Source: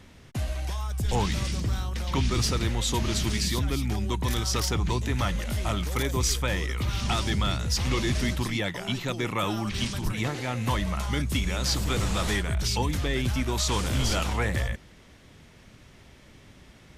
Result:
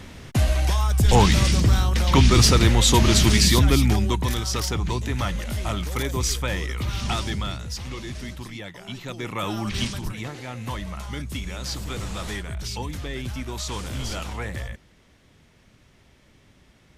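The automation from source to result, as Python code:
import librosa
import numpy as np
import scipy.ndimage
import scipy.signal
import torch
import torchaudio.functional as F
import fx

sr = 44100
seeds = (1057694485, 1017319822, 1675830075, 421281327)

y = fx.gain(x, sr, db=fx.line((3.84, 10.0), (4.4, 1.0), (7.13, 1.0), (7.93, -8.0), (8.73, -8.0), (9.79, 3.5), (10.22, -4.5)))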